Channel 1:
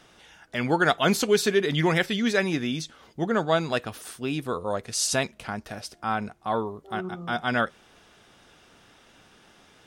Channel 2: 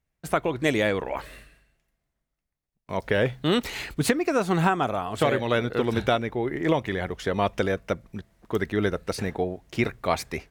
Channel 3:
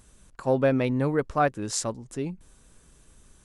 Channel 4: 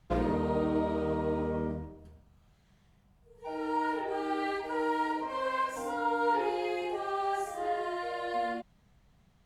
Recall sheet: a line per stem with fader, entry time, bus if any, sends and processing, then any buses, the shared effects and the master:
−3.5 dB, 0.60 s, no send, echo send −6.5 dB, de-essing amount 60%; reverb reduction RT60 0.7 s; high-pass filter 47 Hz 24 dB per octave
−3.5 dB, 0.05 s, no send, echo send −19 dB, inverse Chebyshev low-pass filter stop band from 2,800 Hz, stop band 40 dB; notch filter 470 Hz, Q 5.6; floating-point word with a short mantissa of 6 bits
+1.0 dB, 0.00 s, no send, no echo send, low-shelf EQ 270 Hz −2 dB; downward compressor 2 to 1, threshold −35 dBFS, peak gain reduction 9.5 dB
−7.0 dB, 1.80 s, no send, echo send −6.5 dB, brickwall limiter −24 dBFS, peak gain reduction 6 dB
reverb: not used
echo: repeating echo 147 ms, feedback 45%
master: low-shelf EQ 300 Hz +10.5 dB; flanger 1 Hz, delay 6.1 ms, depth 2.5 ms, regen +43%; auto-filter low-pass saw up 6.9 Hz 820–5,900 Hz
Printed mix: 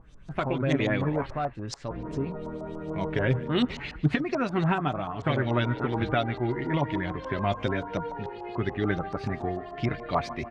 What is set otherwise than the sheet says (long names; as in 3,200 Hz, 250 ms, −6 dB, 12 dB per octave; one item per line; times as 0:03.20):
stem 1: muted
stem 2: missing inverse Chebyshev low-pass filter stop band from 2,800 Hz, stop band 40 dB